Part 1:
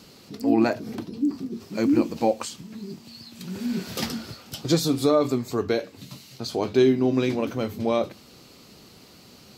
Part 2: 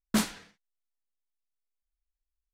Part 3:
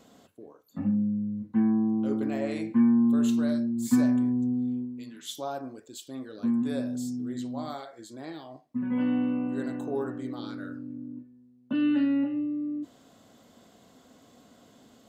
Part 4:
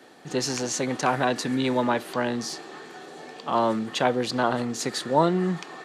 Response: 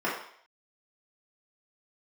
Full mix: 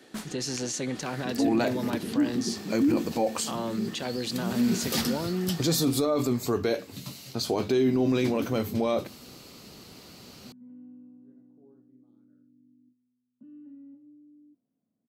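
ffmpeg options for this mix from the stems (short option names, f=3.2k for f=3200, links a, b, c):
-filter_complex "[0:a]adynamicequalizer=threshold=0.00316:dfrequency=7400:dqfactor=0.7:tfrequency=7400:tqfactor=0.7:attack=5:release=100:ratio=0.375:range=3:mode=boostabove:tftype=highshelf,adelay=950,volume=1.5dB[a];[1:a]volume=-11.5dB[b];[2:a]bandpass=f=200:t=q:w=1.6:csg=0,adelay=1700,volume=-19.5dB[c];[3:a]equalizer=f=930:w=0.8:g=-9,alimiter=limit=-22.5dB:level=0:latency=1:release=66,volume=0dB[d];[a][b][c][d]amix=inputs=4:normalize=0,alimiter=limit=-16.5dB:level=0:latency=1:release=11"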